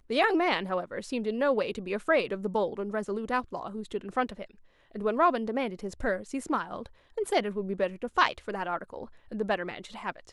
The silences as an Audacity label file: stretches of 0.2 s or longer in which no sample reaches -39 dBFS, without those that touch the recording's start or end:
4.450000	4.950000	silence
6.860000	7.180000	silence
9.050000	9.320000	silence